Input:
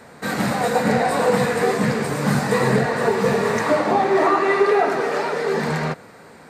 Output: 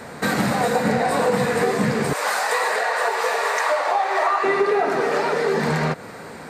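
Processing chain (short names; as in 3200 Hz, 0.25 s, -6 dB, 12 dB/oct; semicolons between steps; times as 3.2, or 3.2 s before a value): 2.13–4.44 HPF 600 Hz 24 dB/oct; compressor 3:1, threshold -27 dBFS, peak gain reduction 11.5 dB; gain +7.5 dB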